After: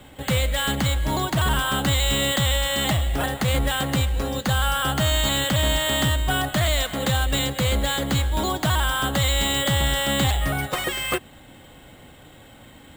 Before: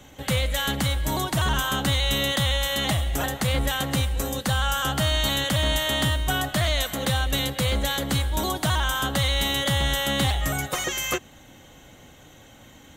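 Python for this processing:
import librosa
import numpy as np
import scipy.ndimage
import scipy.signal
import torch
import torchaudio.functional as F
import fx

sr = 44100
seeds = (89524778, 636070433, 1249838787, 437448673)

p1 = np.repeat(scipy.signal.resample_poly(x, 1, 4), 4)[:len(x)]
p2 = np.clip(p1, -10.0 ** (-21.5 / 20.0), 10.0 ** (-21.5 / 20.0))
y = p1 + (p2 * 10.0 ** (-9.0 / 20.0))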